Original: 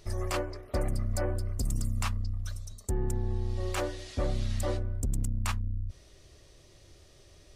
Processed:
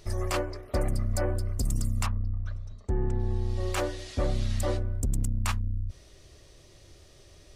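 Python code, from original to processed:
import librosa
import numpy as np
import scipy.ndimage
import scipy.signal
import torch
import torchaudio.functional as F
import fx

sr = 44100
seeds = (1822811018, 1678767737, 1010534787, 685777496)

y = fx.lowpass(x, sr, hz=fx.line((2.05, 1300.0), (3.18, 3400.0)), slope=12, at=(2.05, 3.18), fade=0.02)
y = y * librosa.db_to_amplitude(2.5)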